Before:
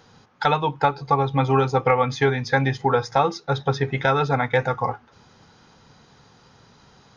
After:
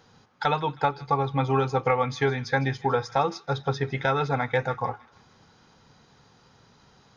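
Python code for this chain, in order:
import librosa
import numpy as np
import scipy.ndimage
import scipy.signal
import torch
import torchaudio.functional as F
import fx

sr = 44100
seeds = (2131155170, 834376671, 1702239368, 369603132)

y = fx.echo_wet_highpass(x, sr, ms=158, feedback_pct=44, hz=1600.0, wet_db=-17)
y = y * librosa.db_to_amplitude(-4.5)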